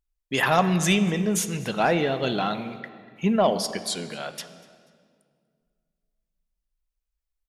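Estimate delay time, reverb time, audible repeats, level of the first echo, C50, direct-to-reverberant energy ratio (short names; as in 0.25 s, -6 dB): 0.243 s, 2.0 s, 2, -23.5 dB, 12.0 dB, 10.5 dB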